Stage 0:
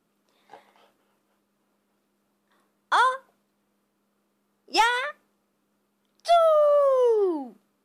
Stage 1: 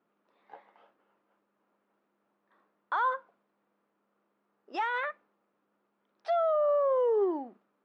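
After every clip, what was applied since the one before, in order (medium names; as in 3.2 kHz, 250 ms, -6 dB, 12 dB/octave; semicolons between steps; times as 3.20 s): high-pass 480 Hz 6 dB/octave; peak limiter -21 dBFS, peak gain reduction 11 dB; low-pass 1.8 kHz 12 dB/octave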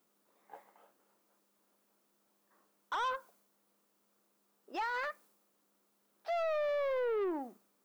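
added noise blue -68 dBFS; saturation -29.5 dBFS, distortion -12 dB; tape noise reduction on one side only decoder only; trim -1.5 dB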